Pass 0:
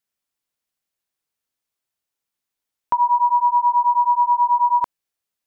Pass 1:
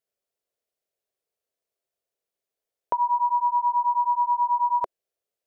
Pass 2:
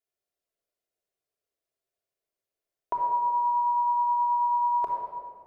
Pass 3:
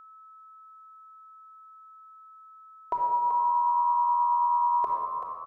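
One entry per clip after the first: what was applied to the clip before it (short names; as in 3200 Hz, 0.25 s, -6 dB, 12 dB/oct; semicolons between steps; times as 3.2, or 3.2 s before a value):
band shelf 510 Hz +13 dB 1.1 oct; gain -6 dB
shoebox room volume 3500 m³, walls mixed, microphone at 3.2 m; gain -6.5 dB
frequency-shifting echo 0.383 s, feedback 34%, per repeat +83 Hz, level -10 dB; whine 1300 Hz -48 dBFS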